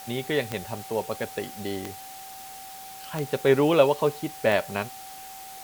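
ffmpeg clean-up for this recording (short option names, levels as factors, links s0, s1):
-af "adeclick=t=4,bandreject=f=770:w=30,afwtdn=0.0063"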